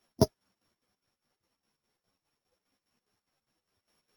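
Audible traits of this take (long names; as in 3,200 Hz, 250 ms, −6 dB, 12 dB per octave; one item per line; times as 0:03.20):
a buzz of ramps at a fixed pitch in blocks of 8 samples
chopped level 4.9 Hz, depth 65%, duty 60%
a shimmering, thickened sound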